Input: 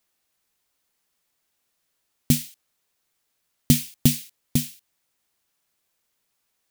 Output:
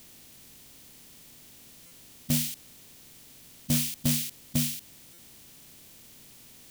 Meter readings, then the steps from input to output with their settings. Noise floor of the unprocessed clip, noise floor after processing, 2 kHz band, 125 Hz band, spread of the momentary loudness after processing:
-75 dBFS, -52 dBFS, -1.0 dB, -6.5 dB, 16 LU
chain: per-bin compression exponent 0.6; limiter -7 dBFS, peak gain reduction 6.5 dB; soft clip -19.5 dBFS, distortion -9 dB; stuck buffer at 1.86/5.13, samples 256, times 8

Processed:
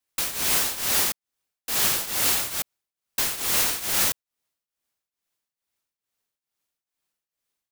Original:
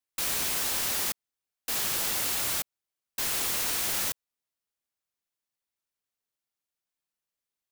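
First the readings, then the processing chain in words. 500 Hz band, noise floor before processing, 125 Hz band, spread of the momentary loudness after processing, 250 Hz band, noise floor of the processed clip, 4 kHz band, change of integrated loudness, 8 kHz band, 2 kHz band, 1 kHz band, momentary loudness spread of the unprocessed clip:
+5.0 dB, under -85 dBFS, +5.0 dB, 11 LU, +5.0 dB, under -85 dBFS, +5.0 dB, +5.0 dB, +5.0 dB, +5.0 dB, +5.0 dB, 13 LU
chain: tremolo triangle 2.3 Hz, depth 85%; gain +9 dB

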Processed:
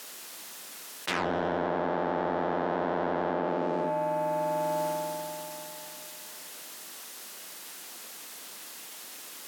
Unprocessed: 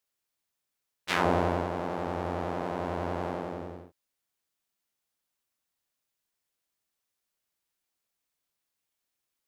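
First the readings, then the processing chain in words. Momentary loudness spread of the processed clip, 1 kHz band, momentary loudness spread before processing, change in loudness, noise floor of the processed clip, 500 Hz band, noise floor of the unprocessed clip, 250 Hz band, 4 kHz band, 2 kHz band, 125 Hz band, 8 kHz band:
12 LU, +4.0 dB, 14 LU, -1.5 dB, -45 dBFS, +4.5 dB, -85 dBFS, +2.0 dB, +3.5 dB, +1.5 dB, -3.5 dB, +14.0 dB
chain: HPF 190 Hz 24 dB/oct; notch 2300 Hz, Q 26; treble ducked by the level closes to 2800 Hz, closed at -30 dBFS; in parallel at -2.5 dB: limiter -20.5 dBFS, peak gain reduction 7.5 dB; on the sum: soft clip -20 dBFS, distortion -13 dB; spring tank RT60 3.1 s, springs 49 ms, chirp 45 ms, DRR 15.5 dB; fast leveller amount 100%; gain -3.5 dB

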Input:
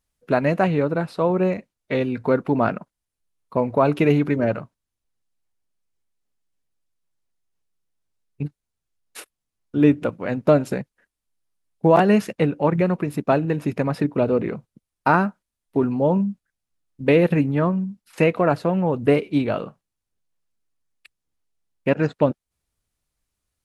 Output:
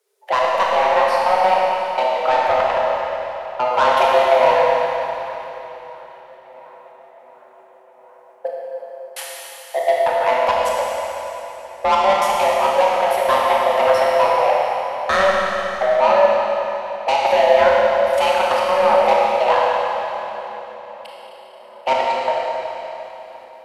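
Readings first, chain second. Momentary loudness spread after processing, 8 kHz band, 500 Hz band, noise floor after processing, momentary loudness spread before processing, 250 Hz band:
18 LU, n/a, +5.5 dB, -46 dBFS, 11 LU, -16.5 dB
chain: in parallel at +1.5 dB: limiter -14 dBFS, peak gain reduction 10 dB; on the sum: step gate "xxxxx.x." 167 bpm -60 dB; frequency shift +380 Hz; soft clip -13 dBFS, distortion -10 dB; on a send: tape echo 0.714 s, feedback 80%, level -21 dB, low-pass 2900 Hz; on the sum: Schroeder reverb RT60 3.3 s, combs from 25 ms, DRR -4 dB

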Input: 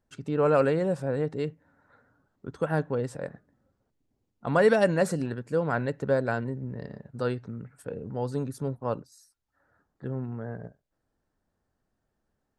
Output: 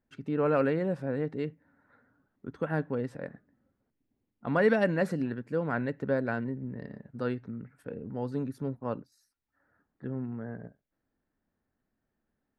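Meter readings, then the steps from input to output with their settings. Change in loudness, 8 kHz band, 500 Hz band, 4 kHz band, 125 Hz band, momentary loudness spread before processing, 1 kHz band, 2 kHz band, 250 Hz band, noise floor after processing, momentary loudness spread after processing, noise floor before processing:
-3.5 dB, under -10 dB, -4.5 dB, -6.0 dB, -4.0 dB, 17 LU, -4.5 dB, -2.0 dB, -0.5 dB, -83 dBFS, 17 LU, -80 dBFS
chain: graphic EQ 250/2000/8000 Hz +7/+6/-11 dB; gain -6 dB

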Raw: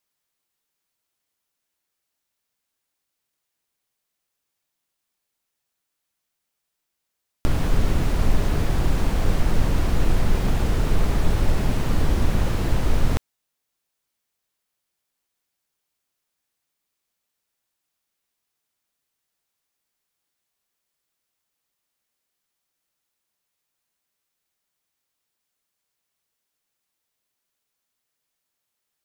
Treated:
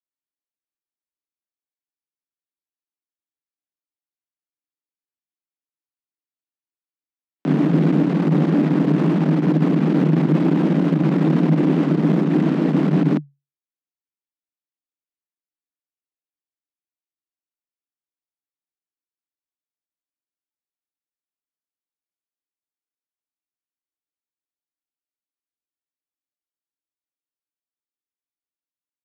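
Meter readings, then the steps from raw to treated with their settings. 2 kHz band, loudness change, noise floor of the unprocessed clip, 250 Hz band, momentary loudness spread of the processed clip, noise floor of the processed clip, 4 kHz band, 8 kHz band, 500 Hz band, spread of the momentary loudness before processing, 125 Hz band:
0.0 dB, +7.0 dB, -80 dBFS, +13.5 dB, 1 LU, under -85 dBFS, n/a, under -10 dB, +7.5 dB, 1 LU, +5.0 dB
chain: one diode to ground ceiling -14.5 dBFS; spectral noise reduction 14 dB; LPF 2800 Hz 12 dB/oct; bell 160 Hz +13 dB 0.92 oct; sample leveller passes 2; frequency shift +140 Hz; gain -4.5 dB

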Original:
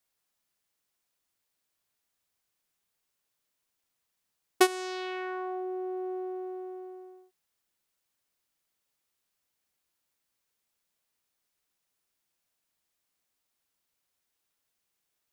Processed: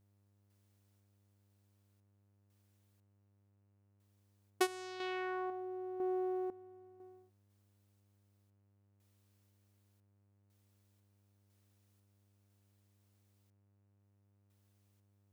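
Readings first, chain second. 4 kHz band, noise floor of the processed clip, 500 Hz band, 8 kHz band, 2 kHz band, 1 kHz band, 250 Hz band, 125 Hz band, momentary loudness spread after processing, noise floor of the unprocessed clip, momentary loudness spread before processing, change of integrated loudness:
-9.5 dB, -73 dBFS, -6.5 dB, -10.5 dB, -8.0 dB, -7.5 dB, -6.5 dB, n/a, 20 LU, -82 dBFS, 16 LU, -6.5 dB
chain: random-step tremolo 2 Hz, depth 95%; buzz 100 Hz, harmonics 30, -74 dBFS -9 dB/oct; gain +1 dB

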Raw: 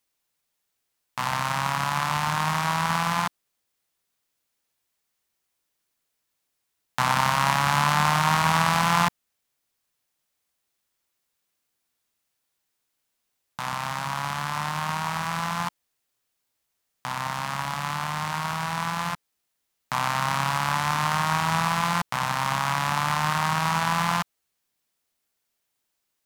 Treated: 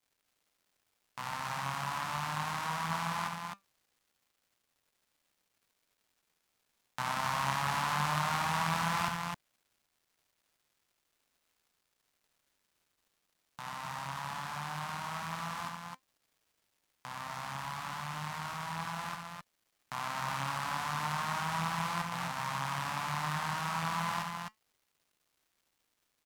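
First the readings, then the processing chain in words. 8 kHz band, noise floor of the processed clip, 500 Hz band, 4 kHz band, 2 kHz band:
-10.5 dB, -81 dBFS, -10.5 dB, -10.5 dB, -10.0 dB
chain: flange 0.11 Hz, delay 0.3 ms, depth 6.5 ms, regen +82%; crackle 320/s -55 dBFS; loudspeakers at several distances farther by 25 m -6 dB, 89 m -4 dB; gain -8 dB

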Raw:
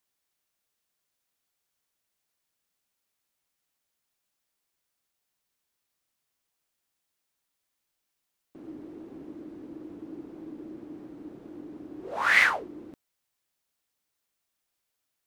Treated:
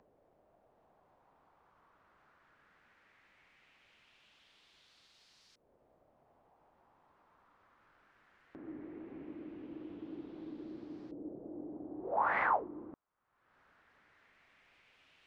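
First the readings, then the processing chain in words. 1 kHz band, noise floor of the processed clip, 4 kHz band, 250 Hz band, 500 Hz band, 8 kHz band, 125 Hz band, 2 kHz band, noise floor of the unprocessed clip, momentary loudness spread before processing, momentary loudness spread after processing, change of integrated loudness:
-1.0 dB, -72 dBFS, -22.0 dB, -4.0 dB, -1.0 dB, under -25 dB, -4.0 dB, -14.5 dB, -82 dBFS, 23 LU, 17 LU, -16.5 dB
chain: LFO low-pass saw up 0.18 Hz 540–5000 Hz; upward compressor, threshold -44 dBFS; gain -4.5 dB

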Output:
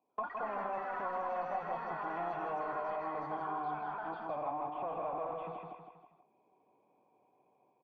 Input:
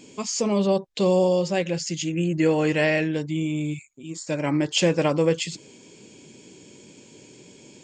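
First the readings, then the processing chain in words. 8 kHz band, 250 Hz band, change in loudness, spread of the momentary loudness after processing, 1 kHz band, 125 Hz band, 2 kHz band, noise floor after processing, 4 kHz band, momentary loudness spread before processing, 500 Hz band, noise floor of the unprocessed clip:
under -40 dB, -25.0 dB, -15.0 dB, 4 LU, -1.0 dB, -27.5 dB, -15.0 dB, -74 dBFS, under -30 dB, 10 LU, -17.0 dB, -50 dBFS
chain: gate -38 dBFS, range -17 dB; low shelf 270 Hz -7.5 dB; sample leveller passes 5; AGC gain up to 9.5 dB; hard clip -19.5 dBFS, distortion -8 dB; vocal tract filter a; echoes that change speed 97 ms, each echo +5 st, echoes 3, each echo -6 dB; on a send: feedback echo 0.16 s, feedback 32%, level -5 dB; on the sum: three-band squash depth 70%; gain -3.5 dB

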